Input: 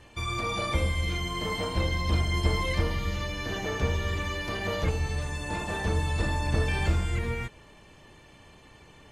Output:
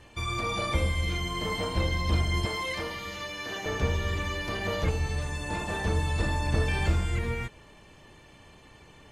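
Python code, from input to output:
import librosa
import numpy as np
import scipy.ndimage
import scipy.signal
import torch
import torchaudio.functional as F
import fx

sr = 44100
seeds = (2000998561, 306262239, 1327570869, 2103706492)

y = fx.highpass(x, sr, hz=500.0, slope=6, at=(2.45, 3.66))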